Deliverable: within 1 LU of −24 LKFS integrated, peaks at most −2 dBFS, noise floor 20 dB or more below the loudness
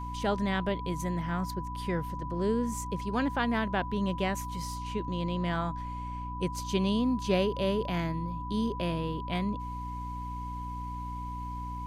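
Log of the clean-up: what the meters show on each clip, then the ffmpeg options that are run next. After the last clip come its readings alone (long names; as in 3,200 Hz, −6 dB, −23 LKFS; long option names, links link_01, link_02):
mains hum 60 Hz; hum harmonics up to 300 Hz; level of the hum −36 dBFS; interfering tone 990 Hz; level of the tone −38 dBFS; integrated loudness −32.0 LKFS; sample peak −14.0 dBFS; target loudness −24.0 LKFS
→ -af "bandreject=frequency=60:width_type=h:width=6,bandreject=frequency=120:width_type=h:width=6,bandreject=frequency=180:width_type=h:width=6,bandreject=frequency=240:width_type=h:width=6,bandreject=frequency=300:width_type=h:width=6"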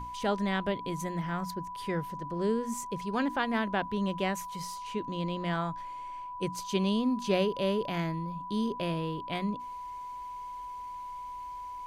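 mains hum none found; interfering tone 990 Hz; level of the tone −38 dBFS
→ -af "bandreject=frequency=990:width=30"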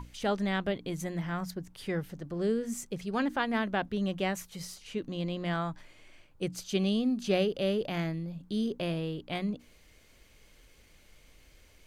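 interfering tone none found; integrated loudness −33.0 LKFS; sample peak −15.0 dBFS; target loudness −24.0 LKFS
→ -af "volume=9dB"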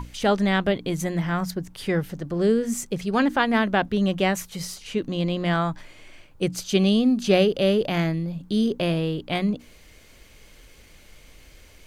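integrated loudness −24.0 LKFS; sample peak −6.0 dBFS; background noise floor −51 dBFS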